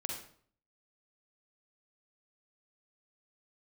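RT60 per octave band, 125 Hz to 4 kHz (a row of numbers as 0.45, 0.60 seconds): 0.65, 0.60, 0.55, 0.50, 0.45, 0.45 seconds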